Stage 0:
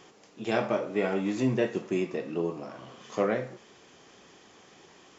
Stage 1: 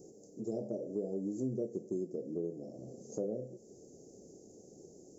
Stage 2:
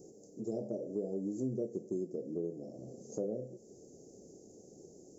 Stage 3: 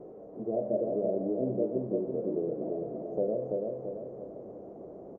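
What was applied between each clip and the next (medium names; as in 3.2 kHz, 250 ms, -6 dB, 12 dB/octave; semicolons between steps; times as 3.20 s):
inverse Chebyshev band-stop 1–3.4 kHz, stop band 50 dB; peaking EQ 1.1 kHz +9.5 dB 1.7 oct; compression 2:1, threshold -45 dBFS, peak gain reduction 13.5 dB; trim +2 dB
no audible change
jump at every zero crossing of -51.5 dBFS; resonant low-pass 670 Hz, resonance Q 4.9; feedback delay 336 ms, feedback 48%, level -3 dB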